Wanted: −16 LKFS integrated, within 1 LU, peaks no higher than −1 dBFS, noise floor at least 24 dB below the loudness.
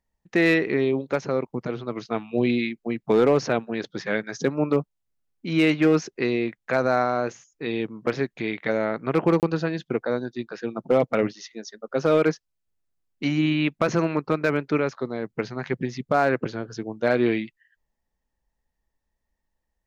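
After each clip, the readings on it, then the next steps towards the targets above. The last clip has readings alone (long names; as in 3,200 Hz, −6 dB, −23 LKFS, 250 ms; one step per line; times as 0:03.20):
share of clipped samples 0.2%; peaks flattened at −11.0 dBFS; number of dropouts 1; longest dropout 28 ms; integrated loudness −24.5 LKFS; sample peak −11.0 dBFS; target loudness −16.0 LKFS
→ clipped peaks rebuilt −11 dBFS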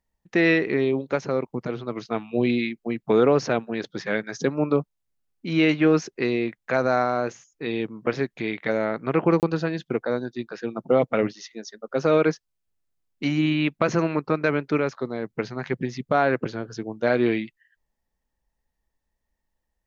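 share of clipped samples 0.0%; number of dropouts 1; longest dropout 28 ms
→ repair the gap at 0:09.40, 28 ms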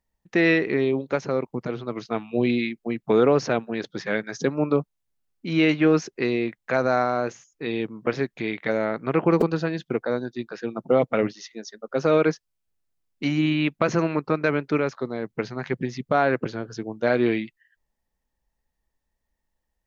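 number of dropouts 0; integrated loudness −24.5 LKFS; sample peak −6.5 dBFS; target loudness −16.0 LKFS
→ level +8.5 dB
brickwall limiter −1 dBFS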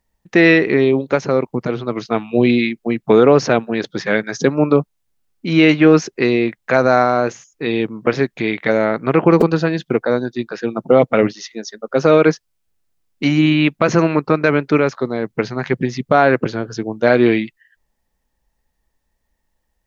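integrated loudness −16.0 LKFS; sample peak −1.0 dBFS; background noise floor −71 dBFS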